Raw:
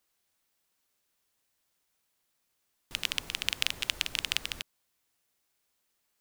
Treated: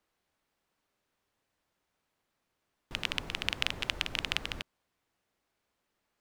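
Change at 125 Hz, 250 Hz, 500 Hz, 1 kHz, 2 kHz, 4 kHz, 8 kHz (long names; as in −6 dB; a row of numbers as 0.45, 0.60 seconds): +5.5, +5.5, +5.0, +3.5, 0.0, −2.5, −8.5 decibels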